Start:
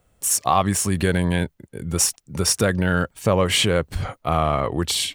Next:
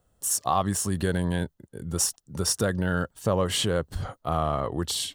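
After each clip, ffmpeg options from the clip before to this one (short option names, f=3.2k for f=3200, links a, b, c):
-af "equalizer=f=2.3k:w=3.9:g=-12.5,volume=-5.5dB"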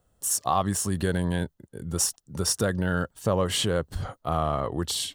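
-af anull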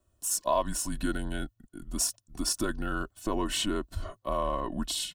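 -af "aecho=1:1:2.6:0.75,afreqshift=-120,volume=-5.5dB"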